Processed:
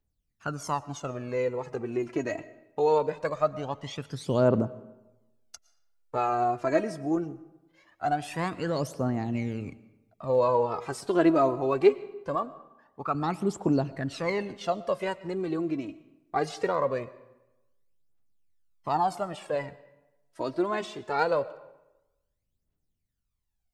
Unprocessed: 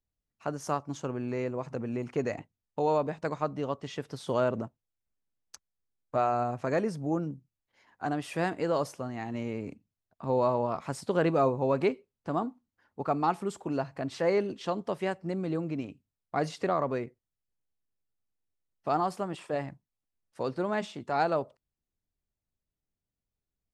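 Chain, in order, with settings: 12.35–13.15 s: tone controls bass -7 dB, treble -5 dB; phaser 0.22 Hz, delay 3.2 ms, feedback 68%; algorithmic reverb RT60 1 s, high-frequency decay 0.7×, pre-delay 75 ms, DRR 18 dB

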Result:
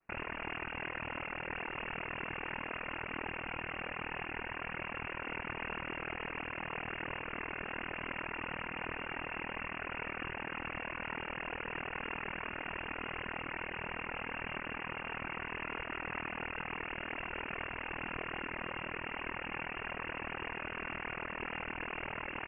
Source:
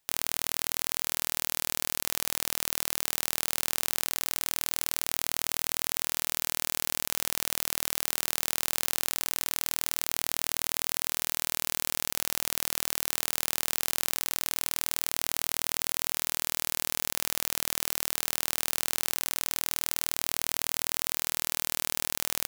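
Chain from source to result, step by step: comb 4.1 ms, depth 87%; noise-vocoded speech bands 16; frequency inversion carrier 3 kHz; trim -2 dB

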